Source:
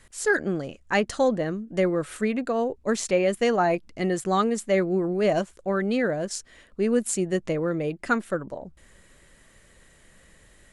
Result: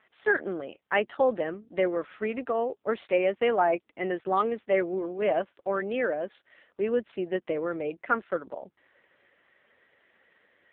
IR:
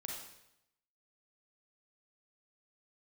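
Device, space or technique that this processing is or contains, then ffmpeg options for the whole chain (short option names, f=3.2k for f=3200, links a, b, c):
telephone: -filter_complex "[0:a]asettb=1/sr,asplit=3[a][b][c];[a]atrim=end=6.104[d];[b]atrim=start=6.1:end=6.96,asetpts=PTS-STARTPTS,afade=t=in:d=0.004:c=qsin,afade=t=out:st=0.856:d=0.004:c=qsin,adynamicequalizer=threshold=0.00316:dfrequency=7400:dqfactor=4.6:tfrequency=7400:tqfactor=4.6:attack=5:release=100:ratio=0.375:range=3:mode=boostabove:tftype=bell[e];[c]atrim=start=6.956[f];[d][e]acrossfade=d=0.004:c1=hsin:c2=qsin[g];[g][f]acrossfade=d=0.004:c1=qsin:c2=hsin,highpass=370,lowpass=3.5k" -ar 8000 -c:a libopencore_amrnb -b:a 5900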